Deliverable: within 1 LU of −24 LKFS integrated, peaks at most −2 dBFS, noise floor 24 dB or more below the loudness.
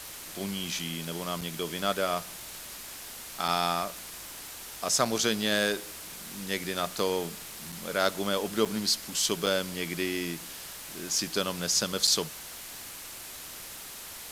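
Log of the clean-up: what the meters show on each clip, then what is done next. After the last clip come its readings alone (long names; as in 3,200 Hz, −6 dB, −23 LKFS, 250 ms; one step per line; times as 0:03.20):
number of dropouts 7; longest dropout 5.5 ms; background noise floor −43 dBFS; target noise floor −55 dBFS; integrated loudness −30.5 LKFS; sample peak −7.5 dBFS; target loudness −24.0 LKFS
→ repair the gap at 0:01.41/0:03.48/0:05.05/0:07.72/0:08.65/0:09.46/0:12.07, 5.5 ms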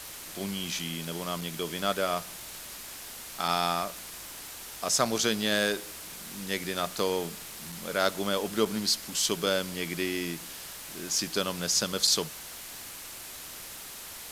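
number of dropouts 0; background noise floor −43 dBFS; target noise floor −55 dBFS
→ broadband denoise 12 dB, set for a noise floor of −43 dBFS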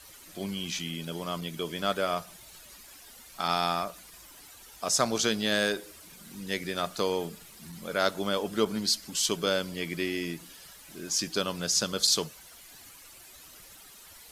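background noise floor −51 dBFS; target noise floor −54 dBFS
→ broadband denoise 6 dB, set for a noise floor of −51 dBFS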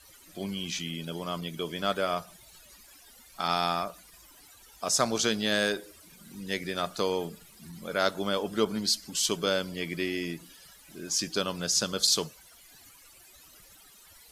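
background noise floor −55 dBFS; integrated loudness −29.5 LKFS; sample peak −8.0 dBFS; target loudness −24.0 LKFS
→ level +5.5 dB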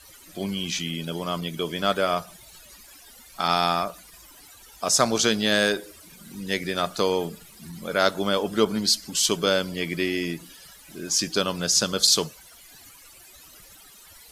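integrated loudness −24.0 LKFS; sample peak −2.5 dBFS; background noise floor −50 dBFS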